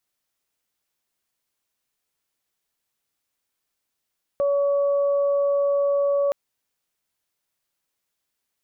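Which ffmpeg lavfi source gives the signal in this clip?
-f lavfi -i "aevalsrc='0.126*sin(2*PI*565*t)+0.02*sin(2*PI*1130*t)':d=1.92:s=44100"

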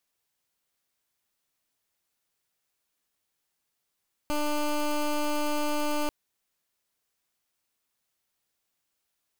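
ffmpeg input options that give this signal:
-f lavfi -i "aevalsrc='0.0447*(2*lt(mod(297*t,1),0.16)-1)':d=1.79:s=44100"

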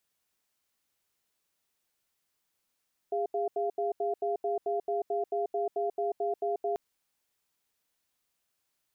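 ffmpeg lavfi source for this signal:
-f lavfi -i "aevalsrc='0.0316*(sin(2*PI*407*t)+sin(2*PI*694*t))*clip(min(mod(t,0.22),0.14-mod(t,0.22))/0.005,0,1)':d=3.64:s=44100"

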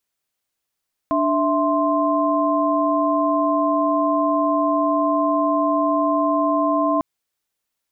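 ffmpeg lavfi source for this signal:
-f lavfi -i "aevalsrc='0.0944*(sin(2*PI*293.66*t)+sin(2*PI*659.26*t)+sin(2*PI*1046.5*t))':d=5.9:s=44100"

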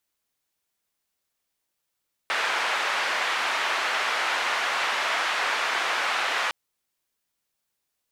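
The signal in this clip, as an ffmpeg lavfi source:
-f lavfi -i "anoisesrc=c=white:d=4.21:r=44100:seed=1,highpass=f=820,lowpass=f=2000,volume=-9dB"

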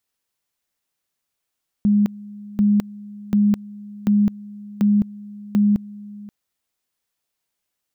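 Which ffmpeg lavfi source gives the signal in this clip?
-f lavfi -i "aevalsrc='pow(10,(-12.5-21*gte(mod(t,0.74),0.21))/20)*sin(2*PI*206*t)':d=4.44:s=44100"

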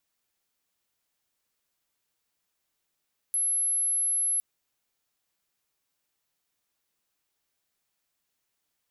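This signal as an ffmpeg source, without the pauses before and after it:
-f lavfi -i "sine=f=11100:d=1.06:r=44100,volume=-5.44dB"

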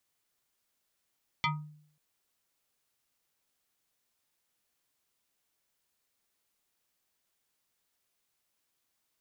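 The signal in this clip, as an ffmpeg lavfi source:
-f lavfi -i "aevalsrc='0.0668*pow(10,-3*t/0.63)*sin(2*PI*151*t+3.4*pow(10,-3*t/0.31)*sin(2*PI*7.26*151*t))':d=0.54:s=44100"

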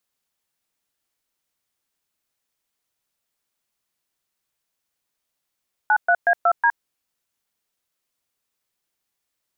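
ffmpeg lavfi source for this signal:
-f lavfi -i "aevalsrc='0.158*clip(min(mod(t,0.184),0.065-mod(t,0.184))/0.002,0,1)*(eq(floor(t/0.184),0)*(sin(2*PI*852*mod(t,0.184))+sin(2*PI*1477*mod(t,0.184)))+eq(floor(t/0.184),1)*(sin(2*PI*697*mod(t,0.184))+sin(2*PI*1477*mod(t,0.184)))+eq(floor(t/0.184),2)*(sin(2*PI*697*mod(t,0.184))+sin(2*PI*1633*mod(t,0.184)))+eq(floor(t/0.184),3)*(sin(2*PI*697*mod(t,0.184))+sin(2*PI*1336*mod(t,0.184)))+eq(floor(t/0.184),4)*(sin(2*PI*941*mod(t,0.184))+sin(2*PI*1633*mod(t,0.184))))':d=0.92:s=44100"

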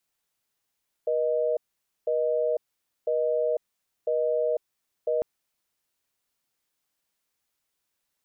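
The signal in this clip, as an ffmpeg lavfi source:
-f lavfi -i "aevalsrc='0.0562*(sin(2*PI*480*t)+sin(2*PI*620*t))*clip(min(mod(t,1),0.5-mod(t,1))/0.005,0,1)':d=4.15:s=44100"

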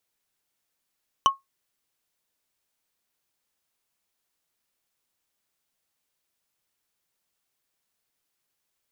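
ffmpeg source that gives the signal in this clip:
-f lavfi -i "aevalsrc='0.299*pow(10,-3*t/0.16)*sin(2*PI*1090*t)+0.15*pow(10,-3*t/0.047)*sin(2*PI*3005.1*t)+0.075*pow(10,-3*t/0.021)*sin(2*PI*5890.4*t)+0.0376*pow(10,-3*t/0.012)*sin(2*PI*9737*t)+0.0188*pow(10,-3*t/0.007)*sin(2*PI*14540.6*t)':d=0.45:s=44100"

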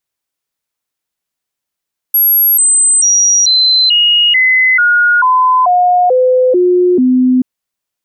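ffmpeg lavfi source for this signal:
-f lavfi -i "aevalsrc='0.501*clip(min(mod(t,0.44),0.44-mod(t,0.44))/0.005,0,1)*sin(2*PI*11500*pow(2,-floor(t/0.44)/2)*mod(t,0.44))':d=5.28:s=44100"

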